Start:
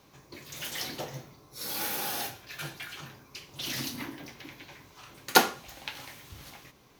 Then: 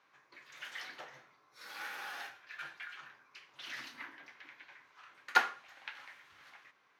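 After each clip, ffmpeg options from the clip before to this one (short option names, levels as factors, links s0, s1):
-af "bandpass=f=1600:t=q:w=1.9:csg=0,volume=0.891"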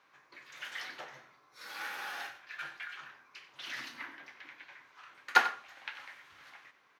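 -filter_complex "[0:a]asplit=2[s0][s1];[s1]adelay=93.29,volume=0.2,highshelf=f=4000:g=-2.1[s2];[s0][s2]amix=inputs=2:normalize=0,volume=1.41"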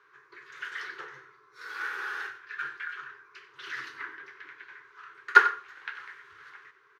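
-af "firequalizer=gain_entry='entry(140,0);entry(220,-20);entry(400,12);entry(630,-20);entry(1000,1);entry(1500,7);entry(2300,-4);entry(6900,-6);entry(13000,-12)':delay=0.05:min_phase=1,volume=1.33"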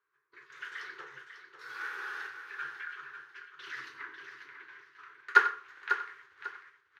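-af "agate=range=0.141:threshold=0.00282:ratio=16:detection=peak,aecho=1:1:546|1092|1638:0.355|0.0993|0.0278,volume=0.596"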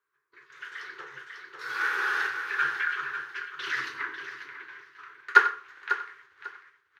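-af "dynaudnorm=f=280:g=11:m=4.47"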